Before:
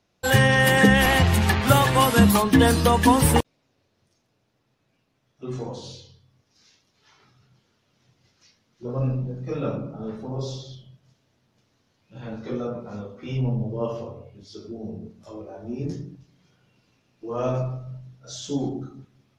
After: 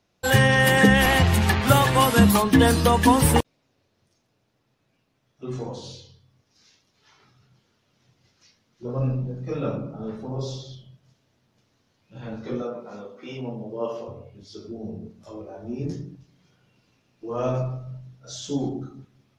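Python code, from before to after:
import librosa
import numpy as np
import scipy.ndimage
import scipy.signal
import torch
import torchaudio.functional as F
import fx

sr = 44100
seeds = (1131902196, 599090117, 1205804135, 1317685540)

y = fx.highpass(x, sr, hz=280.0, slope=12, at=(12.62, 14.08))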